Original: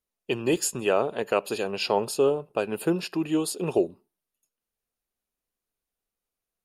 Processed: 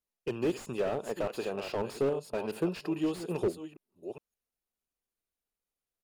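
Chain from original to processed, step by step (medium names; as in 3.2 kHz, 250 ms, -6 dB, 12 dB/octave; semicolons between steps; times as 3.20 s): chunks repeated in reverse 460 ms, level -13 dB; tempo 1.1×; slew-rate limiter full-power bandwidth 48 Hz; trim -5 dB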